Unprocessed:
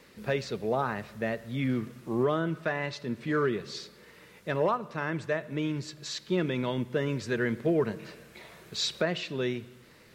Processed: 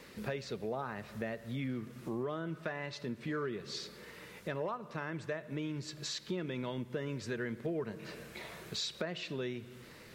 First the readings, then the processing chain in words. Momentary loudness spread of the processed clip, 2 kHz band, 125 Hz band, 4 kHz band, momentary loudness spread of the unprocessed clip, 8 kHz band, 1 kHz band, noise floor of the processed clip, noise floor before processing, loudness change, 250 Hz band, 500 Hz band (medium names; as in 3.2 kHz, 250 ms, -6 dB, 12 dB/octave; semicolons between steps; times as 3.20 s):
8 LU, -8.5 dB, -7.5 dB, -5.5 dB, 12 LU, -4.5 dB, -9.5 dB, -54 dBFS, -56 dBFS, -8.5 dB, -8.0 dB, -9.0 dB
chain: compression 3:1, threshold -41 dBFS, peak gain reduction 14 dB; trim +2.5 dB